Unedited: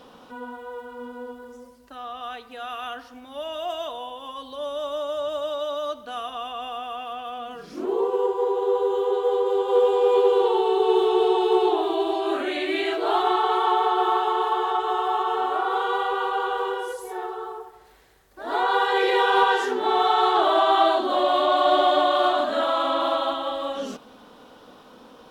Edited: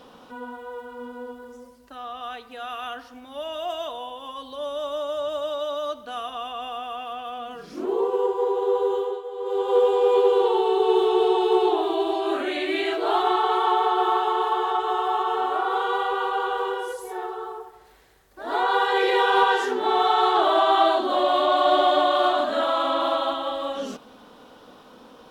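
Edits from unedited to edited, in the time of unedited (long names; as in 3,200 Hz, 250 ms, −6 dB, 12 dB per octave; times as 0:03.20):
0:08.93–0:09.65: duck −12.5 dB, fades 0.30 s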